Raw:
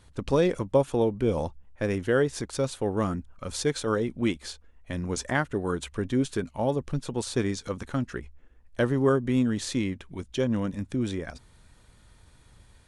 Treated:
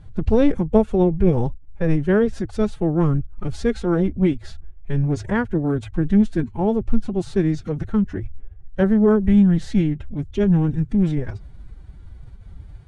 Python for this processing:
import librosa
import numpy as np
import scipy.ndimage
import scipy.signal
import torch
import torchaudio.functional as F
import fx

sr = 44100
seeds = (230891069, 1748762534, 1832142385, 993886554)

y = fx.pitch_keep_formants(x, sr, semitones=8.0)
y = fx.riaa(y, sr, side='playback')
y = y * librosa.db_to_amplitude(2.0)